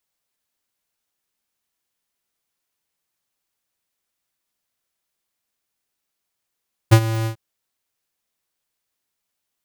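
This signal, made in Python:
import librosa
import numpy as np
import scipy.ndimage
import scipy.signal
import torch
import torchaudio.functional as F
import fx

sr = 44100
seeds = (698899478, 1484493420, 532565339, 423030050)

y = fx.adsr_tone(sr, wave='square', hz=112.0, attack_ms=19.0, decay_ms=68.0, sustain_db=-15.0, held_s=0.35, release_ms=96.0, level_db=-7.0)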